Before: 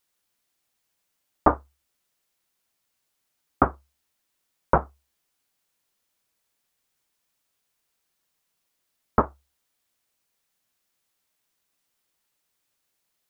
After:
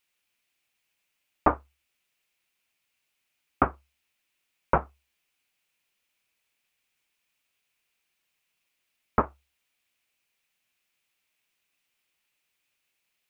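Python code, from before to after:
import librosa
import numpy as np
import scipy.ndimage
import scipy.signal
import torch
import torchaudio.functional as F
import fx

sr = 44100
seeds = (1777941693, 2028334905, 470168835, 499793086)

y = fx.peak_eq(x, sr, hz=2500.0, db=12.5, octaves=0.76)
y = y * librosa.db_to_amplitude(-4.0)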